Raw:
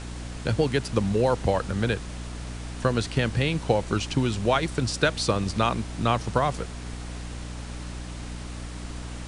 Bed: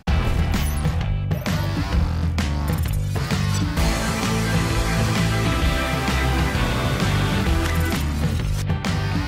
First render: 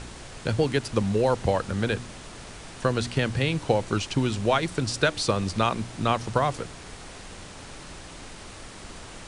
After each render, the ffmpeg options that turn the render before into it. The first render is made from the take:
-af "bandreject=f=60:t=h:w=4,bandreject=f=120:t=h:w=4,bandreject=f=180:t=h:w=4,bandreject=f=240:t=h:w=4,bandreject=f=300:t=h:w=4"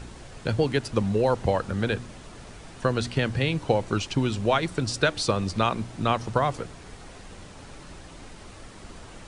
-af "afftdn=nr=6:nf=-43"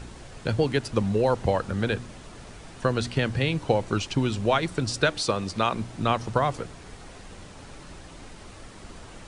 -filter_complex "[0:a]asettb=1/sr,asplit=3[a][b][c];[a]atrim=end=5.174[d];[b]atrim=start=5.17:end=5.73,asetpts=PTS-STARTPTS,afade=t=in:d=0.004:c=qsin,afade=t=out:st=0.556:d=0.004:c=qsin,lowshelf=f=150:g=-8[e];[c]atrim=start=5.726[f];[d][e]acrossfade=d=0.004:c1=hsin:c2=qsin[g];[g][f]acrossfade=d=0.004:c1=qsin:c2=hsin"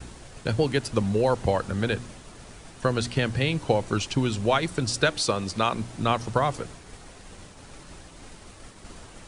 -af "agate=range=-33dB:threshold=-40dB:ratio=3:detection=peak,highshelf=f=7.9k:g=8"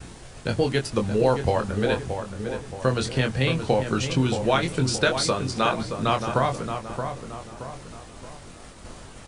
-filter_complex "[0:a]asplit=2[a][b];[b]adelay=23,volume=-5.5dB[c];[a][c]amix=inputs=2:normalize=0,asplit=2[d][e];[e]adelay=624,lowpass=f=1.9k:p=1,volume=-7dB,asplit=2[f][g];[g]adelay=624,lowpass=f=1.9k:p=1,volume=0.47,asplit=2[h][i];[i]adelay=624,lowpass=f=1.9k:p=1,volume=0.47,asplit=2[j][k];[k]adelay=624,lowpass=f=1.9k:p=1,volume=0.47,asplit=2[l][m];[m]adelay=624,lowpass=f=1.9k:p=1,volume=0.47,asplit=2[n][o];[o]adelay=624,lowpass=f=1.9k:p=1,volume=0.47[p];[d][f][h][j][l][n][p]amix=inputs=7:normalize=0"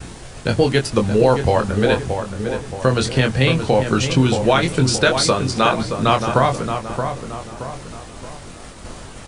-af "volume=7dB,alimiter=limit=-3dB:level=0:latency=1"

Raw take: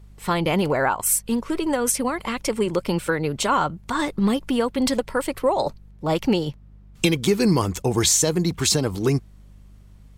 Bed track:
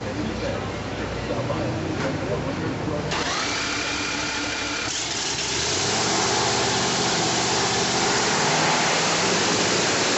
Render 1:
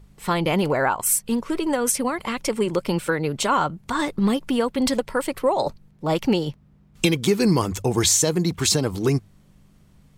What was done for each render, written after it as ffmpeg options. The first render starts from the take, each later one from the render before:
-af "bandreject=f=50:t=h:w=4,bandreject=f=100:t=h:w=4"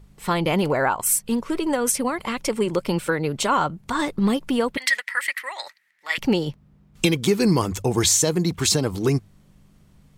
-filter_complex "[0:a]asettb=1/sr,asplit=3[a][b][c];[a]atrim=end=4.774[d];[b]atrim=start=4.77:end=6.18,asetpts=PTS-STARTPTS,afade=t=in:d=0.004:c=qsin,afade=t=out:st=1.406:d=0.004:c=qsin,highpass=f=1.9k:t=q:w=10[e];[c]atrim=start=6.176[f];[d][e]acrossfade=d=0.004:c1=hsin:c2=qsin[g];[g][f]acrossfade=d=0.004:c1=qsin:c2=hsin"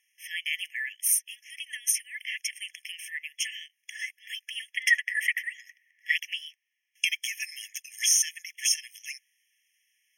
-af "afftfilt=real='re*eq(mod(floor(b*sr/1024/1700),2),1)':imag='im*eq(mod(floor(b*sr/1024/1700),2),1)':win_size=1024:overlap=0.75"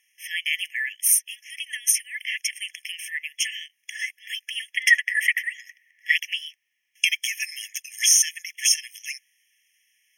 -af "volume=5.5dB"

